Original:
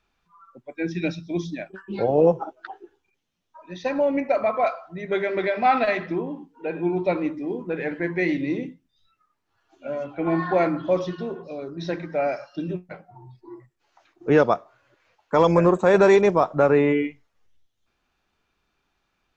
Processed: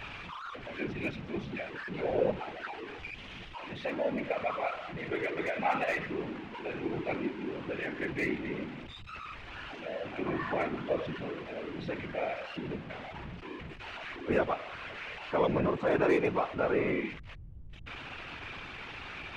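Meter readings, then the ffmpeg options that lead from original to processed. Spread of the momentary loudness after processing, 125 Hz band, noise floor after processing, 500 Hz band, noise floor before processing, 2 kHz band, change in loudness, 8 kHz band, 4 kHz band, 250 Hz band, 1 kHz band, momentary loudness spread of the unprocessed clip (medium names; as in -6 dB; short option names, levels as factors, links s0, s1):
14 LU, -10.0 dB, -46 dBFS, -11.0 dB, -74 dBFS, -5.5 dB, -12.0 dB, no reading, -3.0 dB, -10.0 dB, -10.0 dB, 17 LU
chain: -filter_complex "[0:a]aeval=exprs='val(0)+0.5*0.0531*sgn(val(0))':c=same,lowpass=f=2600:t=q:w=2.1,acrossover=split=1400[s0][s1];[s1]aeval=exprs='clip(val(0),-1,0.112)':c=same[s2];[s0][s2]amix=inputs=2:normalize=0,afftfilt=real='hypot(re,im)*cos(2*PI*random(0))':imag='hypot(re,im)*sin(2*PI*random(1))':win_size=512:overlap=0.75,volume=0.447"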